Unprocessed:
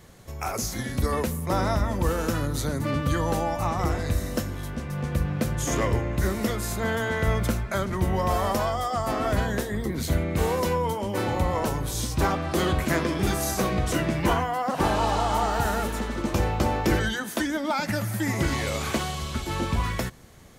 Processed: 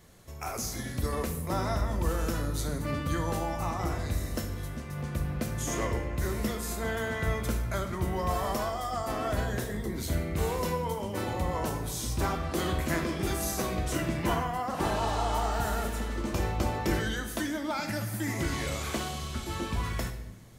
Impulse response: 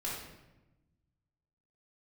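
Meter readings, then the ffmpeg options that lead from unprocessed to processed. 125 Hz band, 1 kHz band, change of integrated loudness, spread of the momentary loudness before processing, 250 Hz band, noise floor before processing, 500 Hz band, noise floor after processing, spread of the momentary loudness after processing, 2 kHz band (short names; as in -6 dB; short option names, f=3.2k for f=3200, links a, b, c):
-5.0 dB, -5.5 dB, -5.5 dB, 5 LU, -5.5 dB, -35 dBFS, -6.0 dB, -38 dBFS, 5 LU, -5.5 dB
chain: -filter_complex "[0:a]asplit=2[a][b];[1:a]atrim=start_sample=2205,highshelf=f=4.4k:g=9.5[c];[b][c]afir=irnorm=-1:irlink=0,volume=-7.5dB[d];[a][d]amix=inputs=2:normalize=0,volume=-8.5dB"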